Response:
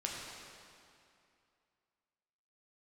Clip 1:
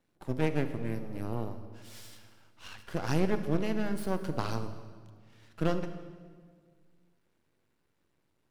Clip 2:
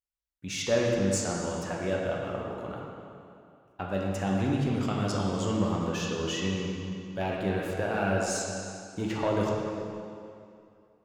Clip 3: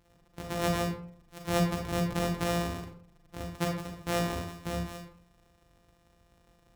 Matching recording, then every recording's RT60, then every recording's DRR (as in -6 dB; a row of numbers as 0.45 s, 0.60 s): 2; 1.8 s, 2.5 s, 0.55 s; 9.0 dB, -3.0 dB, 0.5 dB